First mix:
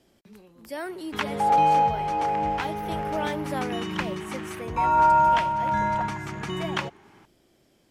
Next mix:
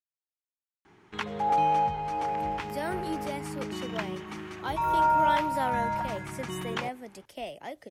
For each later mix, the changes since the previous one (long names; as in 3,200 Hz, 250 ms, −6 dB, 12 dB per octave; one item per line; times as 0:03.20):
speech: entry +2.05 s
background −5.0 dB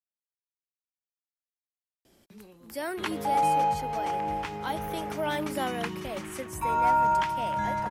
background: entry +1.85 s
master: add high-shelf EQ 7,700 Hz +7.5 dB